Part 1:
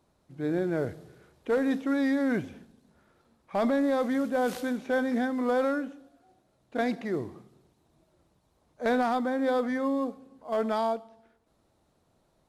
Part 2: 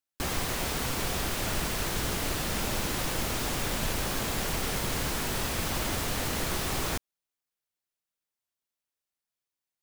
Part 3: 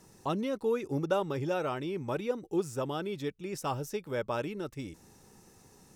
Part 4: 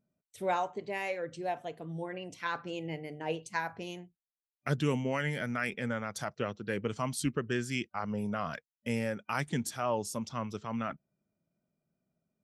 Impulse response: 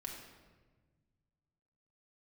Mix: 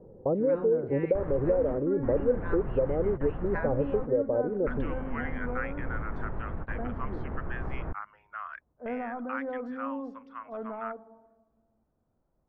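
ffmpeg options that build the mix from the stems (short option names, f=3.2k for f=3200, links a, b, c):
-filter_complex "[0:a]volume=-10.5dB,asplit=2[a][b];[b]volume=-8dB[c];[1:a]adelay=950,volume=-4dB[d];[2:a]lowpass=f=520:t=q:w=6.4,volume=2dB,asplit=2[e][f];[f]volume=-22dB[g];[3:a]highpass=f=1.2k:w=0.5412,highpass=f=1.2k:w=1.3066,adynamicequalizer=threshold=0.00251:dfrequency=2900:dqfactor=0.7:tfrequency=2900:tqfactor=0.7:attack=5:release=100:ratio=0.375:range=4:mode=boostabove:tftype=highshelf,volume=3dB,asplit=2[h][i];[i]apad=whole_len=475099[j];[d][j]sidechaingate=range=-25dB:threshold=-52dB:ratio=16:detection=peak[k];[a][k]amix=inputs=2:normalize=0,lowpass=f=1.1k:p=1,alimiter=level_in=4.5dB:limit=-24dB:level=0:latency=1:release=193,volume=-4.5dB,volume=0dB[l];[e][h]amix=inputs=2:normalize=0,acompressor=threshold=-24dB:ratio=10,volume=0dB[m];[4:a]atrim=start_sample=2205[n];[c][g]amix=inputs=2:normalize=0[o];[o][n]afir=irnorm=-1:irlink=0[p];[l][m][p]amix=inputs=3:normalize=0,lowpass=f=1.6k:w=0.5412,lowpass=f=1.6k:w=1.3066,lowshelf=f=85:g=9.5"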